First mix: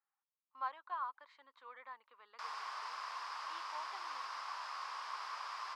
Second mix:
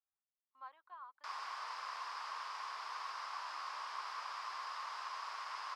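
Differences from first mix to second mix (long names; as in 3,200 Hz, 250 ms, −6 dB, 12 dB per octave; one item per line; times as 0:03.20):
speech −11.5 dB
background: entry −1.15 s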